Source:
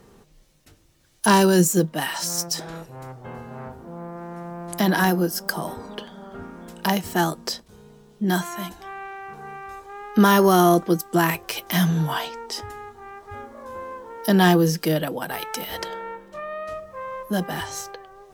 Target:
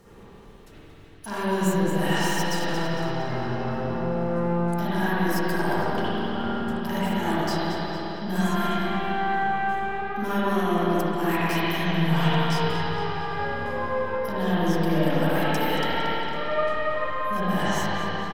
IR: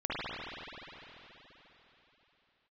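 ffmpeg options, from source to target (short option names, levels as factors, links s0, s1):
-filter_complex "[0:a]aecho=1:1:229|458|687|916:0.168|0.0672|0.0269|0.0107,areverse,acompressor=threshold=0.0501:ratio=10,areverse,aeval=exprs='(tanh(17.8*val(0)+0.2)-tanh(0.2))/17.8':c=same[s0];[1:a]atrim=start_sample=2205[s1];[s0][s1]afir=irnorm=-1:irlink=0"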